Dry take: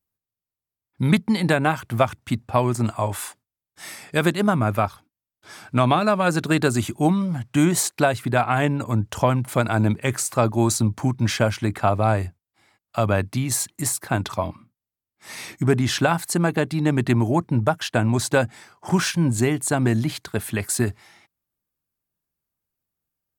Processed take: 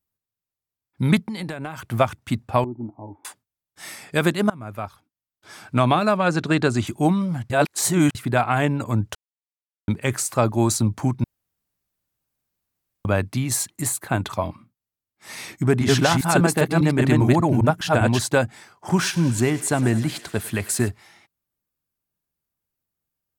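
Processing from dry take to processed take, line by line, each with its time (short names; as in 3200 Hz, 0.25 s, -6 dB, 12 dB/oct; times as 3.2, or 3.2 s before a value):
1.22–1.89 compressor 12:1, threshold -26 dBFS
2.64–3.25 vocal tract filter u
4.5–5.63 fade in, from -22 dB
6.17–6.87 LPF 6100 Hz
7.5–8.15 reverse
9.15–9.88 mute
11.24–13.05 room tone
13.85–14.33 bell 5300 Hz -10 dB 0.27 oct
15.61–18.19 reverse delay 0.2 s, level -0.5 dB
18.88–20.88 thinning echo 0.102 s, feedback 85%, level -17 dB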